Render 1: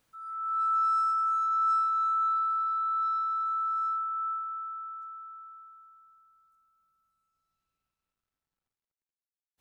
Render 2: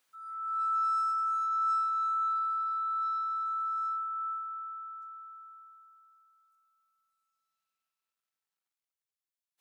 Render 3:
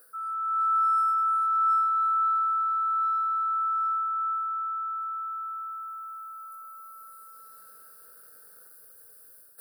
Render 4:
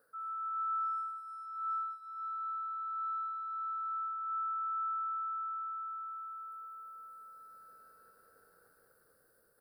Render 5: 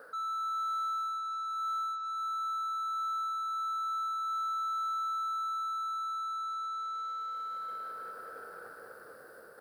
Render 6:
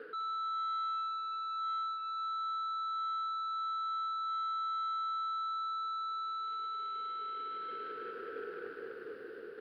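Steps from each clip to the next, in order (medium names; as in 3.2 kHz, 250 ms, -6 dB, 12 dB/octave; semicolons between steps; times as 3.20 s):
high-pass 1.3 kHz 6 dB/octave
FFT filter 330 Hz 0 dB, 480 Hz +13 dB, 690 Hz -2 dB, 990 Hz -10 dB, 1.5 kHz +9 dB, 2.2 kHz -21 dB, 3.3 kHz -23 dB, 4.7 kHz -3 dB, 6.6 kHz -17 dB, 9.6 kHz +9 dB; reverse; upward compressor, threshold -29 dBFS; reverse; trim +2.5 dB
low-pass 1.4 kHz 6 dB/octave; bouncing-ball echo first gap 200 ms, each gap 0.75×, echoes 5; trim -4.5 dB
overload inside the chain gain 34 dB; overdrive pedal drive 26 dB, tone 1.2 kHz, clips at -33.5 dBFS; trim +5.5 dB
FFT filter 160 Hz 0 dB, 420 Hz +15 dB, 590 Hz -9 dB, 1.1 kHz -6 dB, 2.9 kHz +14 dB, 7.1 kHz -20 dB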